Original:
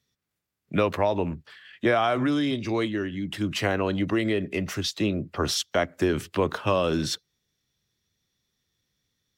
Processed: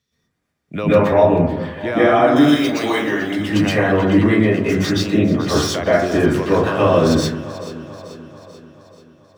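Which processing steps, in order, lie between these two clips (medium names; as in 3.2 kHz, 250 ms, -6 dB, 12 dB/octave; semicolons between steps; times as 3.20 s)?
median filter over 3 samples; 2.36–3.32 s: RIAA curve recording; in parallel at +1 dB: peak limiter -20 dBFS, peak gain reduction 9.5 dB; on the sum: echo whose repeats swap between lows and highs 218 ms, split 1.7 kHz, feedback 74%, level -12 dB; plate-style reverb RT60 0.63 s, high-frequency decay 0.25×, pre-delay 110 ms, DRR -9.5 dB; trim -5.5 dB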